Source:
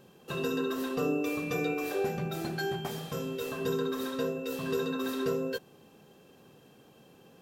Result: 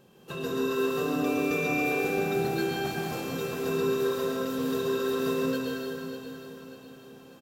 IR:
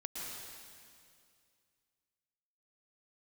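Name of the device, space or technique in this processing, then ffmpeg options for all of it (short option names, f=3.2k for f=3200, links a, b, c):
stairwell: -filter_complex "[1:a]atrim=start_sample=2205[a];[0:a][a]afir=irnorm=-1:irlink=0,aecho=1:1:593|1186|1779|2372|2965:0.282|0.13|0.0596|0.0274|0.0126,volume=3dB"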